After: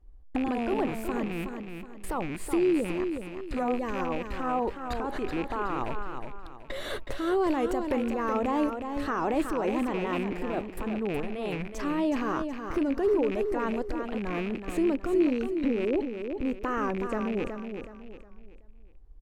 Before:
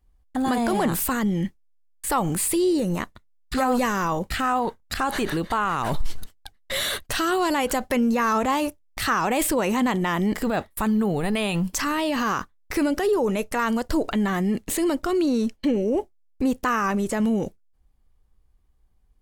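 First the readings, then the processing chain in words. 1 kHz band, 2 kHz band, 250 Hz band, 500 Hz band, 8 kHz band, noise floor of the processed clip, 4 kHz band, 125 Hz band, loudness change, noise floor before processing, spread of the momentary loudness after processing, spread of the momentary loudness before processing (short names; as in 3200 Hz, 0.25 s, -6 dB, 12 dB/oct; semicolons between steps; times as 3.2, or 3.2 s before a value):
-7.5 dB, -9.0 dB, -5.0 dB, -3.0 dB, -19.0 dB, -48 dBFS, -13.0 dB, -9.5 dB, -6.0 dB, -61 dBFS, 10 LU, 6 LU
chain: rattling part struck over -29 dBFS, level -13 dBFS; tilt -4 dB/oct; compressor, threshold -24 dBFS, peak gain reduction 27 dB; resonant low shelf 240 Hz -9.5 dB, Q 1.5; on a send: feedback echo 0.37 s, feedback 35%, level -7 dB; on the sum: record warp 45 rpm, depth 100 cents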